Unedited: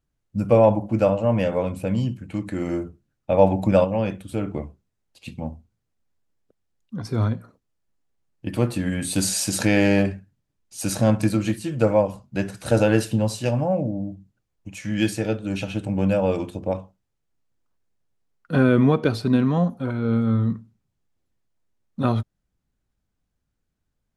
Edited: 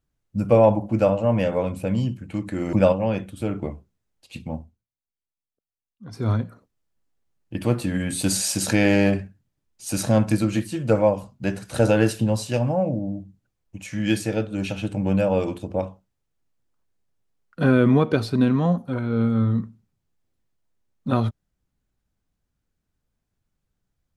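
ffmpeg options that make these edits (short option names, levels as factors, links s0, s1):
-filter_complex "[0:a]asplit=4[s0][s1][s2][s3];[s0]atrim=end=2.732[s4];[s1]atrim=start=3.648:end=5.79,asetpts=PTS-STARTPTS,afade=t=out:st=1.812:d=0.33:silence=0.0944061[s5];[s2]atrim=start=5.79:end=6.89,asetpts=PTS-STARTPTS,volume=0.0944[s6];[s3]atrim=start=6.89,asetpts=PTS-STARTPTS,afade=t=in:d=0.33:silence=0.0944061[s7];[s5][s6][s7]concat=n=3:v=0:a=1[s8];[s4][s8]acrossfade=d=0.004:c1=hsin:c2=hsin"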